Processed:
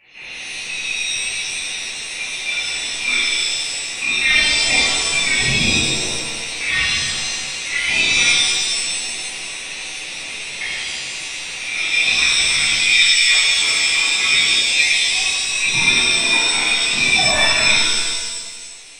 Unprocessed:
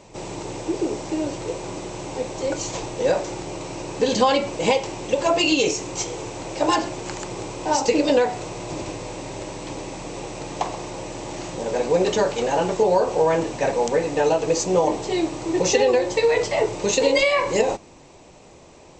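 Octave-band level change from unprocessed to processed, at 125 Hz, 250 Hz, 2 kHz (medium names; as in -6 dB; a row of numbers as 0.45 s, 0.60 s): -0.5 dB, -7.5 dB, +15.0 dB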